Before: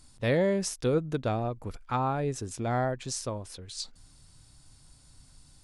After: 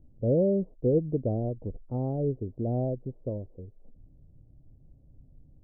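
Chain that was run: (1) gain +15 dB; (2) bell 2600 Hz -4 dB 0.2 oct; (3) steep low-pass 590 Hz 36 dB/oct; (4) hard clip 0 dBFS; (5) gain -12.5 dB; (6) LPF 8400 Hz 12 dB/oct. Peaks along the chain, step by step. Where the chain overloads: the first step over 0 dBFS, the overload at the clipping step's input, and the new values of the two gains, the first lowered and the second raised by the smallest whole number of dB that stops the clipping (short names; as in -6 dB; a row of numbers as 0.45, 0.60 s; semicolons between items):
-1.0, -1.0, -2.0, -2.0, -14.5, -14.5 dBFS; no overload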